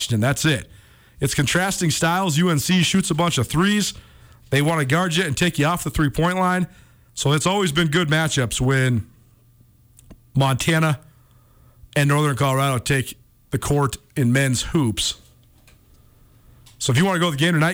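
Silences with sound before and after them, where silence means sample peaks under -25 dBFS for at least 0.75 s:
9.01–10.36 s
10.95–11.96 s
15.12–16.81 s

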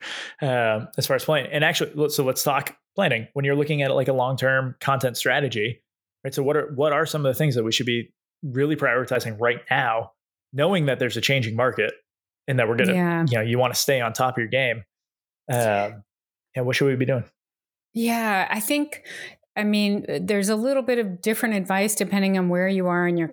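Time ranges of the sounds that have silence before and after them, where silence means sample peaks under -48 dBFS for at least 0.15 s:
2.97–5.77 s
6.24–8.09 s
8.43–10.10 s
10.53–11.99 s
12.48–14.83 s
15.48–16.02 s
16.54–17.28 s
17.95–19.35 s

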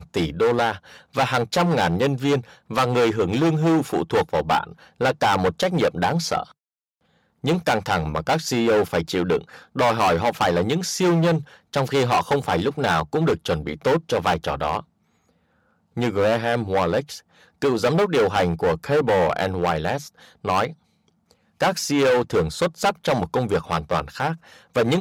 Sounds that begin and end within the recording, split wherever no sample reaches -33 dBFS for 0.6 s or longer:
7.44–14.80 s
15.97–20.71 s

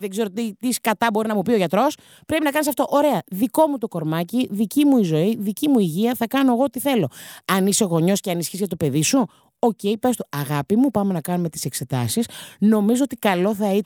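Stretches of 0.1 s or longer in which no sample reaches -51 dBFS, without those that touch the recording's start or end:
9.49–9.63 s

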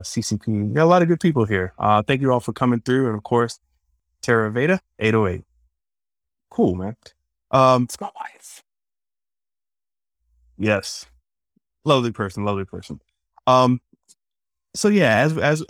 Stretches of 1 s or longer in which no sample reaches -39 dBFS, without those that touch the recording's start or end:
5.41–6.52 s
8.59–10.59 s

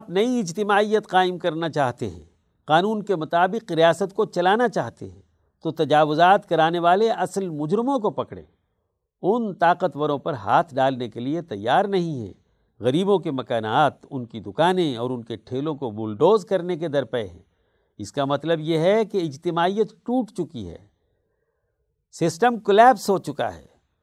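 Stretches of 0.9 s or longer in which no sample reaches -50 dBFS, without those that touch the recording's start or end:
20.87–22.13 s

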